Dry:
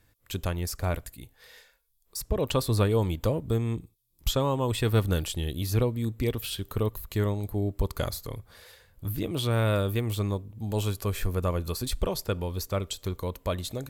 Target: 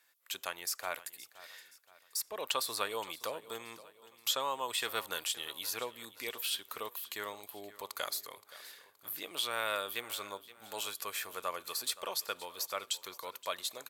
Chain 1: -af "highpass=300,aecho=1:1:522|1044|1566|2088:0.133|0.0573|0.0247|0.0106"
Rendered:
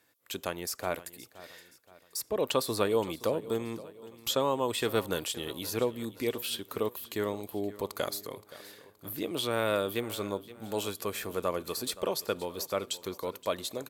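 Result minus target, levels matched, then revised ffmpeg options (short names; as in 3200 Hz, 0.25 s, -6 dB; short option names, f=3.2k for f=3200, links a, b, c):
250 Hz band +13.5 dB
-af "highpass=1k,aecho=1:1:522|1044|1566|2088:0.133|0.0573|0.0247|0.0106"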